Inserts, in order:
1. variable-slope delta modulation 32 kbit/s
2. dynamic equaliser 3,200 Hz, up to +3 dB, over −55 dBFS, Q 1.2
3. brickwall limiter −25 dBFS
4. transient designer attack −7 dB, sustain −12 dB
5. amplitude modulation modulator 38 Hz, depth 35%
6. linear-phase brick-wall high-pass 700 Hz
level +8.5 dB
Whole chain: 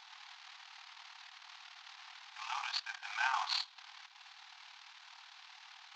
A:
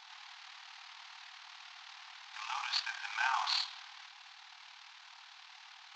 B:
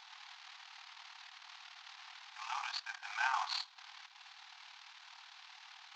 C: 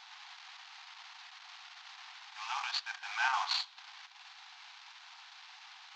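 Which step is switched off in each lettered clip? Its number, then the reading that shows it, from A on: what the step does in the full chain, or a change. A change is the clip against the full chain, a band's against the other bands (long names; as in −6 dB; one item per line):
4, change in integrated loudness +4.0 LU
2, 4 kHz band −2.0 dB
5, change in integrated loudness +2.5 LU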